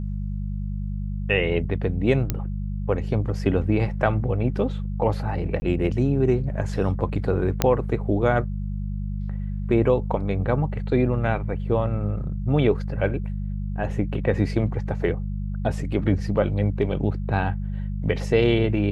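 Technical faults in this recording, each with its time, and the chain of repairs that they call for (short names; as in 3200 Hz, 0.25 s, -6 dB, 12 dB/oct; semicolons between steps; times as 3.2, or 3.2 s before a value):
hum 50 Hz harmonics 4 -28 dBFS
2.3 pop -9 dBFS
5.6–5.62 gap 20 ms
7.62 pop -4 dBFS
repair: de-click; de-hum 50 Hz, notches 4; interpolate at 5.6, 20 ms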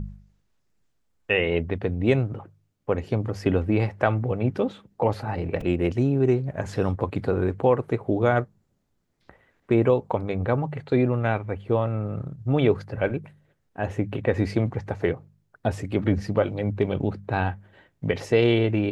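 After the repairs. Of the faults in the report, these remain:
none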